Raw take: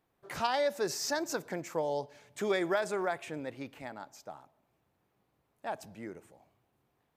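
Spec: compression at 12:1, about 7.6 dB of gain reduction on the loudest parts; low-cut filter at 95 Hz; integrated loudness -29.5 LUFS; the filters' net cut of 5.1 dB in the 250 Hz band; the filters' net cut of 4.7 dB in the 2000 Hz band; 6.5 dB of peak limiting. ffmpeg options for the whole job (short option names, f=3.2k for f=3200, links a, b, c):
-af "highpass=95,equalizer=f=250:t=o:g=-8,equalizer=f=2k:t=o:g=-6,acompressor=threshold=-35dB:ratio=12,volume=14.5dB,alimiter=limit=-18.5dB:level=0:latency=1"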